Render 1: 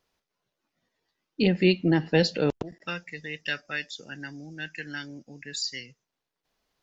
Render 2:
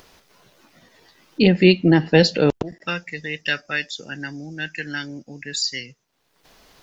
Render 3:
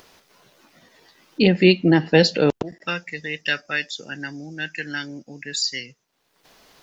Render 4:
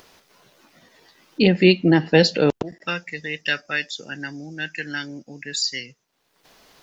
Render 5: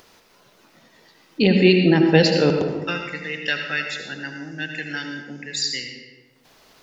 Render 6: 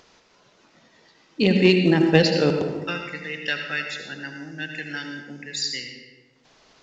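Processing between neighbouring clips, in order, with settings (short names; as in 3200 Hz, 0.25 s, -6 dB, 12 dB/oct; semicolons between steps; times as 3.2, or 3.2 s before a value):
upward compressor, threshold -45 dBFS; gain +7.5 dB
low shelf 91 Hz -9.5 dB
nothing audible
reverb RT60 1.3 s, pre-delay 71 ms, DRR 3.5 dB; gain -1 dB
added harmonics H 3 -21 dB, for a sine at -1 dBFS; µ-law 128 kbps 16000 Hz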